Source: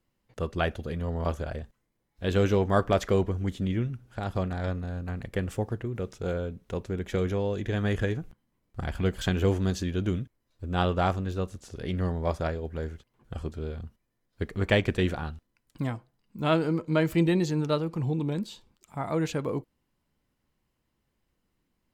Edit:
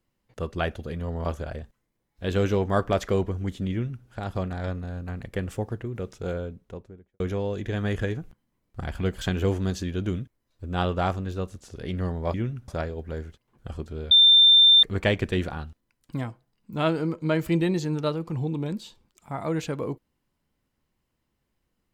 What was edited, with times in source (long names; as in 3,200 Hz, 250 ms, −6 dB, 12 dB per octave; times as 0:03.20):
0:03.71–0:04.05: duplicate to 0:12.34
0:06.29–0:07.20: fade out and dull
0:13.77–0:14.49: beep over 3,580 Hz −11.5 dBFS